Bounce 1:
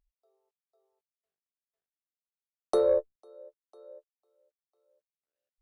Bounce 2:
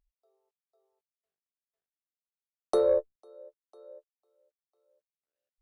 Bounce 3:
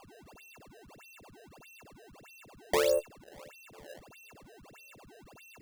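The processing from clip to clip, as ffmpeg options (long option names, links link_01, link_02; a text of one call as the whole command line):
ffmpeg -i in.wav -af anull out.wav
ffmpeg -i in.wav -af "aeval=exprs='val(0)+0.00355*sin(2*PI*2700*n/s)':channel_layout=same,acrusher=samples=22:mix=1:aa=0.000001:lfo=1:lforange=35.2:lforate=1.6,volume=-3dB" out.wav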